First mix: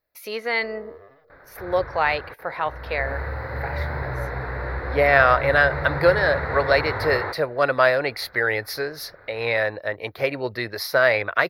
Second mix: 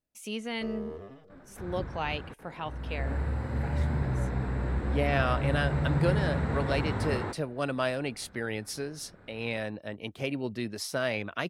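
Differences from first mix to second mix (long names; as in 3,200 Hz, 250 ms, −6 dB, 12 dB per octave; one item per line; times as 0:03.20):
speech −4.0 dB
first sound +8.0 dB
master: remove drawn EQ curve 120 Hz 0 dB, 210 Hz −11 dB, 510 Hz +9 dB, 810 Hz +7 dB, 2,000 Hz +13 dB, 3,000 Hz −4 dB, 4,300 Hz +10 dB, 8,000 Hz −17 dB, 13,000 Hz +13 dB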